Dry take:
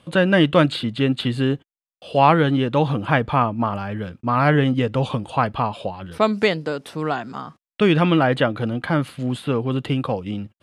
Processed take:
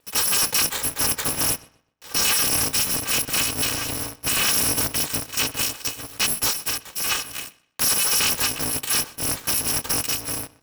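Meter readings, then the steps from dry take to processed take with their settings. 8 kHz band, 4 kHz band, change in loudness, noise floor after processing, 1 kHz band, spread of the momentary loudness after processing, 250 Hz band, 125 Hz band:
can't be measured, +6.5 dB, −0.5 dB, −60 dBFS, −11.0 dB, 8 LU, −15.0 dB, −14.5 dB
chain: samples in bit-reversed order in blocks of 256 samples
high-pass filter 390 Hz 6 dB per octave
spectral tilt −2.5 dB per octave
leveller curve on the samples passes 2
brickwall limiter −14 dBFS, peak gain reduction 4.5 dB
pitch vibrato 13 Hz 31 cents
feedback echo with a low-pass in the loop 125 ms, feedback 28%, low-pass 4,700 Hz, level −20 dB
ring modulator with a square carrier 200 Hz

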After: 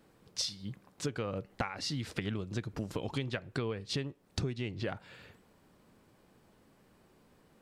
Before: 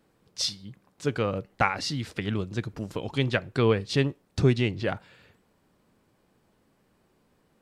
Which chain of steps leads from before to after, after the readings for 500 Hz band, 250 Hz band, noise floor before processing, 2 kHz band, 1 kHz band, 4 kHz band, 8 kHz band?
−11.0 dB, −9.0 dB, −68 dBFS, −10.5 dB, −12.0 dB, −6.5 dB, −4.0 dB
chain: downward compressor 16 to 1, threshold −34 dBFS, peak gain reduction 19.5 dB
level +2.5 dB

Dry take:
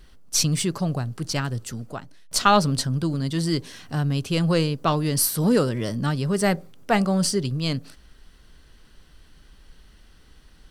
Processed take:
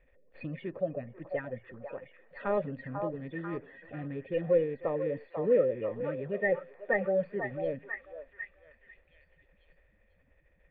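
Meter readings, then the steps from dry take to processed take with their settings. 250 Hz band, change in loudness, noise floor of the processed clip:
−14.5 dB, −9.5 dB, −68 dBFS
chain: spectral magnitudes quantised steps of 30 dB
formant resonators in series e
echo through a band-pass that steps 493 ms, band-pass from 870 Hz, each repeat 0.7 octaves, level −2.5 dB
level +3.5 dB

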